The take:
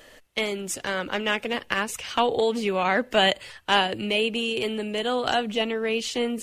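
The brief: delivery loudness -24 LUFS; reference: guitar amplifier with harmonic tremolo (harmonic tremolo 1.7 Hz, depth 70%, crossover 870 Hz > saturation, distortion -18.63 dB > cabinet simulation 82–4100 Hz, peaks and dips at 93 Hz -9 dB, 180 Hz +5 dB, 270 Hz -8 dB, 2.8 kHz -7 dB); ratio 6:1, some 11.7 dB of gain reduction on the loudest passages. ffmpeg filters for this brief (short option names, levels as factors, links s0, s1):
-filter_complex "[0:a]acompressor=threshold=0.0398:ratio=6,acrossover=split=870[s0][s1];[s0]aeval=exprs='val(0)*(1-0.7/2+0.7/2*cos(2*PI*1.7*n/s))':c=same[s2];[s1]aeval=exprs='val(0)*(1-0.7/2-0.7/2*cos(2*PI*1.7*n/s))':c=same[s3];[s2][s3]amix=inputs=2:normalize=0,asoftclip=threshold=0.0501,highpass=82,equalizer=f=93:t=q:w=4:g=-9,equalizer=f=180:t=q:w=4:g=5,equalizer=f=270:t=q:w=4:g=-8,equalizer=f=2800:t=q:w=4:g=-7,lowpass=f=4100:w=0.5412,lowpass=f=4100:w=1.3066,volume=5.01"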